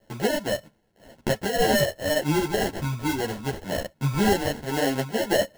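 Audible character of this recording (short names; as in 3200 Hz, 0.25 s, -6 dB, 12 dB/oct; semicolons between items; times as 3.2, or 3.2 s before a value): a quantiser's noise floor 12-bit, dither triangular; tremolo triangle 1.9 Hz, depth 50%; aliases and images of a low sample rate 1200 Hz, jitter 0%; a shimmering, thickened sound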